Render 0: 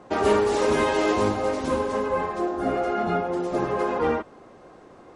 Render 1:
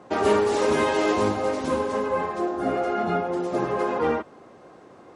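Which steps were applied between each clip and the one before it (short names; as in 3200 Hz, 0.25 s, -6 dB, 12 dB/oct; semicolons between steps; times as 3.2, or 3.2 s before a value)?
HPF 82 Hz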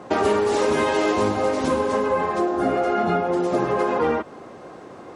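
compressor 3:1, threshold -27 dBFS, peak gain reduction 9 dB; gain +8 dB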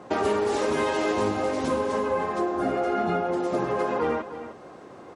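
echo 0.307 s -12.5 dB; gain -4.5 dB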